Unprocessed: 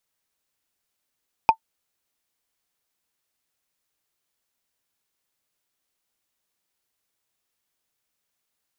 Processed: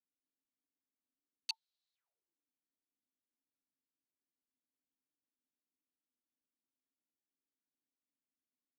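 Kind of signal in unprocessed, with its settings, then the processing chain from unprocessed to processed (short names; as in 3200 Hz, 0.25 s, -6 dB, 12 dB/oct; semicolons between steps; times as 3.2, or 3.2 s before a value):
wood hit, lowest mode 893 Hz, decay 0.08 s, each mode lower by 10 dB, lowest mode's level -5 dB
wrapped overs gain 17.5 dB; auto-wah 240–4000 Hz, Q 5.8, up, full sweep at -47.5 dBFS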